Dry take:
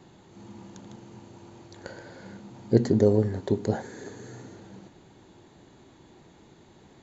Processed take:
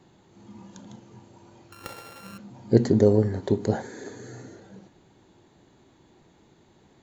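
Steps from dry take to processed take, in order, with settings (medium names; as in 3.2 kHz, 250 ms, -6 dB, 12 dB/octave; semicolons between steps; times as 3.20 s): 1.72–2.38 s: sorted samples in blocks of 32 samples; spectral noise reduction 6 dB; trim +2 dB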